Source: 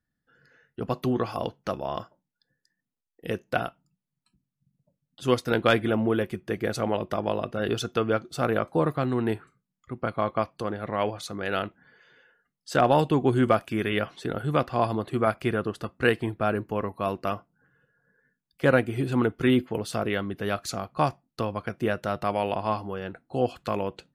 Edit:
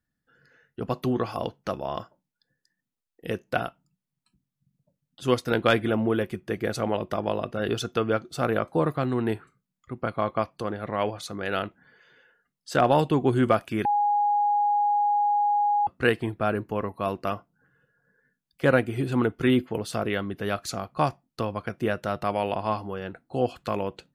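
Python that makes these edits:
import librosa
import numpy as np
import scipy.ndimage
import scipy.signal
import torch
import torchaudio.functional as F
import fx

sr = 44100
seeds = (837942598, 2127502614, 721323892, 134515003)

y = fx.edit(x, sr, fx.bleep(start_s=13.85, length_s=2.02, hz=825.0, db=-19.5), tone=tone)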